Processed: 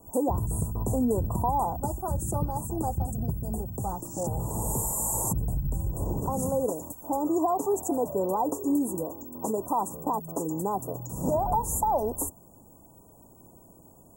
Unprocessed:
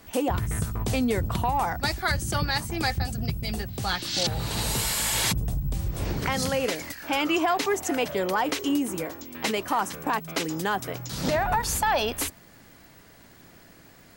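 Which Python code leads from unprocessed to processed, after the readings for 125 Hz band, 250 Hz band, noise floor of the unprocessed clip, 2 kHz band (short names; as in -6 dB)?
-1.0 dB, -0.5 dB, -52 dBFS, under -35 dB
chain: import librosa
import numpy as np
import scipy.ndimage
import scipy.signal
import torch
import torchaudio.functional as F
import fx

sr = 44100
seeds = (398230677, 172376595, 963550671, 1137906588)

y = scipy.signal.sosfilt(scipy.signal.cheby1(4, 1.0, [1000.0, 7200.0], 'bandstop', fs=sr, output='sos'), x)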